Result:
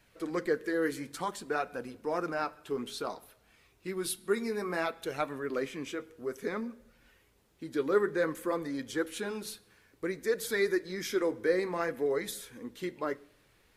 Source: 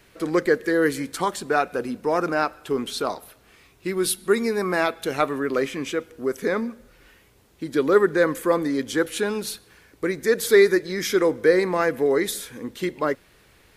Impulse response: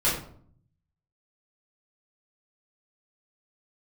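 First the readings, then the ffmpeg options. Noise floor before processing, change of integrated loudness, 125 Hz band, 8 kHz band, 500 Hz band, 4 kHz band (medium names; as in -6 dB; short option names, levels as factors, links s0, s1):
-57 dBFS, -10.5 dB, -10.5 dB, -10.5 dB, -10.5 dB, -10.5 dB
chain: -filter_complex "[0:a]flanger=delay=1.2:depth=8.7:regen=-52:speed=0.57:shape=sinusoidal,asplit=2[s0][s1];[1:a]atrim=start_sample=2205,asetrate=39690,aresample=44100[s2];[s1][s2]afir=irnorm=-1:irlink=0,volume=0.0211[s3];[s0][s3]amix=inputs=2:normalize=0,volume=0.473"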